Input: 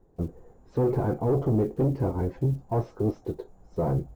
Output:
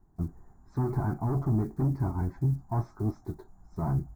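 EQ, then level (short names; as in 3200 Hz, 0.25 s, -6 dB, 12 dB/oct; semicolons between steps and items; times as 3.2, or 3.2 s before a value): fixed phaser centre 1200 Hz, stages 4; 0.0 dB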